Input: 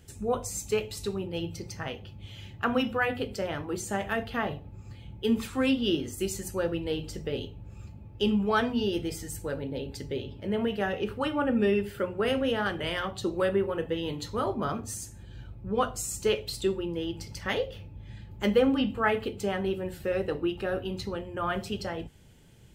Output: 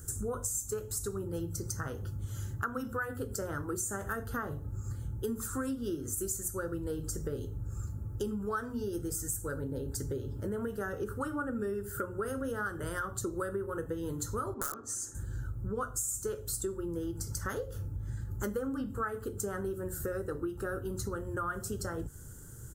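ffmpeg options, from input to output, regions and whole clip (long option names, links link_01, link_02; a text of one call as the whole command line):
ffmpeg -i in.wav -filter_complex "[0:a]asettb=1/sr,asplit=3[link_01][link_02][link_03];[link_01]atrim=end=14.544[link_04];[link_02]atrim=start=14.54:end=15.15,asetpts=PTS-STARTPTS,afade=type=in:duration=0.004:curve=qsin,afade=type=out:start_time=0.606:duration=0.004:curve=qsin,acrossover=split=260 6200:gain=0.112 1 0.1[link_05][link_06][link_07];[link_05][link_06][link_07]amix=inputs=3:normalize=0,aeval=exprs='(mod(17.8*val(0)+1,2)-1)/17.8':channel_layout=same[link_08];[link_03]atrim=start=15.146[link_09];[link_04][link_08]acrossfade=duration=0.004:curve1=hsin:curve2=qsin[link_10];[link_10][link_09]acrossfade=duration=0.004:curve1=qsin:curve2=hsin,firequalizer=gain_entry='entry(120,0);entry(190,-9);entry(290,-4);entry(450,-5);entry(720,-14);entry(1400,4);entry(2300,-27);entry(6800,6);entry(10000,8)':delay=0.05:min_phase=1,acompressor=threshold=-42dB:ratio=6,volume=9dB" out.wav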